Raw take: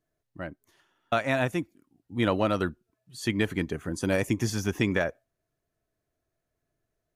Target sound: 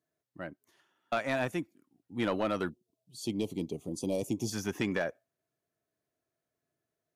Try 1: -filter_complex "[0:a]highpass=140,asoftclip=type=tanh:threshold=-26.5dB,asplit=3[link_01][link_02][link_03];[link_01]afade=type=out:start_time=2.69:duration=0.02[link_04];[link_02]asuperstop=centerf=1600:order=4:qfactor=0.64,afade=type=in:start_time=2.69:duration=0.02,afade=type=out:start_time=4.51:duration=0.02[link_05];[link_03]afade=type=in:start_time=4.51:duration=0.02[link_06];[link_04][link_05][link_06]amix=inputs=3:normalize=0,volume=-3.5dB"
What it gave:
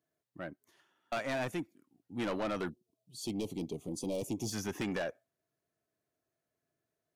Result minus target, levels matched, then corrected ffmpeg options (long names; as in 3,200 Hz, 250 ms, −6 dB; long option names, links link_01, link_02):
soft clipping: distortion +9 dB
-filter_complex "[0:a]highpass=140,asoftclip=type=tanh:threshold=-17.5dB,asplit=3[link_01][link_02][link_03];[link_01]afade=type=out:start_time=2.69:duration=0.02[link_04];[link_02]asuperstop=centerf=1600:order=4:qfactor=0.64,afade=type=in:start_time=2.69:duration=0.02,afade=type=out:start_time=4.51:duration=0.02[link_05];[link_03]afade=type=in:start_time=4.51:duration=0.02[link_06];[link_04][link_05][link_06]amix=inputs=3:normalize=0,volume=-3.5dB"